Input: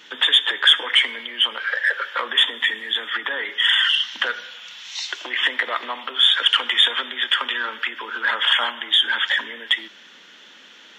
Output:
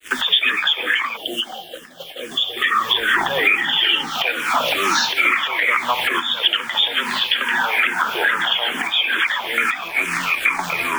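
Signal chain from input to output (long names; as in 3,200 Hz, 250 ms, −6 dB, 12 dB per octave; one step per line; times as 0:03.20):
downsampling to 16,000 Hz
bit reduction 7 bits
automatic gain control gain up to 5 dB
delay with pitch and tempo change per echo 111 ms, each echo −6 semitones, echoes 2, each echo −6 dB
parametric band 2,500 Hz +4 dB 0.45 octaves
downward compressor 20 to 1, threshold −27 dBFS, peak gain reduction 21.5 dB
0:01.17–0:02.57: gain on a spectral selection 810–2,700 Hz −27 dB
0:02.93–0:04.10: low-shelf EQ 260 Hz +11.5 dB
echo through a band-pass that steps 327 ms, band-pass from 240 Hz, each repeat 0.7 octaves, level −7.5 dB
downward expander −38 dBFS
boost into a limiter +18.5 dB
frequency shifter mixed with the dry sound −2.3 Hz
level −3 dB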